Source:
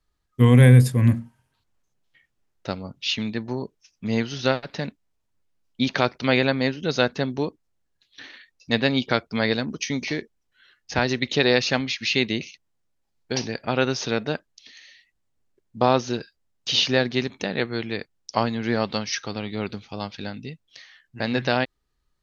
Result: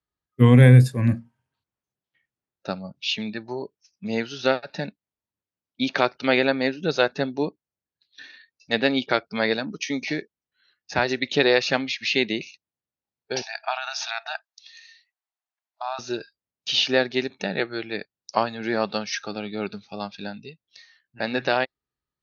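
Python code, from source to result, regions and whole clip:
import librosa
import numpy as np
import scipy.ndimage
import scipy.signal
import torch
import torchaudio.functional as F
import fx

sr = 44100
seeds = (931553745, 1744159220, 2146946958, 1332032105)

y = fx.chain(x, sr, fx.over_compress(threshold_db=-24.0, ratio=-1.0),
    fx.brickwall_highpass(low_hz=630.0), at=(13.42, 15.99))
y = scipy.signal.sosfilt(scipy.signal.butter(2, 82.0, 'highpass', fs=sr, output='sos'), y)
y = fx.high_shelf(y, sr, hz=6600.0, db=-11.0)
y = fx.noise_reduce_blind(y, sr, reduce_db=11)
y = F.gain(torch.from_numpy(y), 1.5).numpy()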